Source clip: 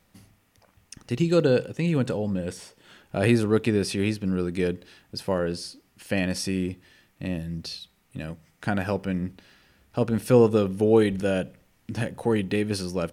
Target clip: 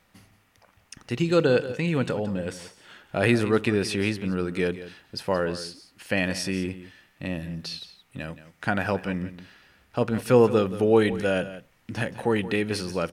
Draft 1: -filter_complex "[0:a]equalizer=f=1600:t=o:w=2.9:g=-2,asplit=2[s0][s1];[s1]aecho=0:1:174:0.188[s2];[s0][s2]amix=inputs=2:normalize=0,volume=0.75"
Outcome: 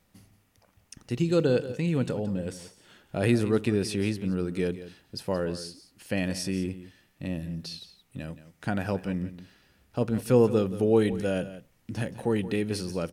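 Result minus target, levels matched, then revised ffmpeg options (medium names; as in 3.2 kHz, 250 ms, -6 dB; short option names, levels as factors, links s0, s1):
2 kHz band -6.0 dB
-filter_complex "[0:a]equalizer=f=1600:t=o:w=2.9:g=7,asplit=2[s0][s1];[s1]aecho=0:1:174:0.188[s2];[s0][s2]amix=inputs=2:normalize=0,volume=0.75"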